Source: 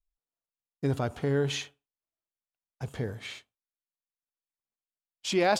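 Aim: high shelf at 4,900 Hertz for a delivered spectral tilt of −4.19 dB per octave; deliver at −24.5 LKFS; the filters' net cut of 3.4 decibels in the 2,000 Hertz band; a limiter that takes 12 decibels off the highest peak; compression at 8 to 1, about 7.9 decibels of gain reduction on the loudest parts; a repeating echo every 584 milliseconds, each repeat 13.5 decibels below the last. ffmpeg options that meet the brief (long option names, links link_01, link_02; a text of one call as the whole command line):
ffmpeg -i in.wav -af "equalizer=frequency=2000:width_type=o:gain=-5.5,highshelf=frequency=4900:gain=6,acompressor=threshold=-29dB:ratio=8,alimiter=level_in=9dB:limit=-24dB:level=0:latency=1,volume=-9dB,aecho=1:1:584|1168:0.211|0.0444,volume=20dB" out.wav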